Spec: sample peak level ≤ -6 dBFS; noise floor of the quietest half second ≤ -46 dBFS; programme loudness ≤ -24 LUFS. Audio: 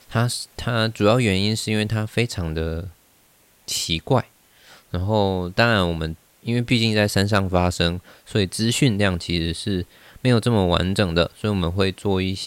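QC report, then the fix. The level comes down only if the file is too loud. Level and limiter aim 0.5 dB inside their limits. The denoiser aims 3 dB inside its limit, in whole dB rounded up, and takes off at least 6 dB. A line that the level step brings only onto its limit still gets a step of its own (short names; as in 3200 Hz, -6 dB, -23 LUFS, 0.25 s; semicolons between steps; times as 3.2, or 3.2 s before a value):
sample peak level -4.0 dBFS: fail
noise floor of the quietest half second -57 dBFS: OK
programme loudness -21.5 LUFS: fail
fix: gain -3 dB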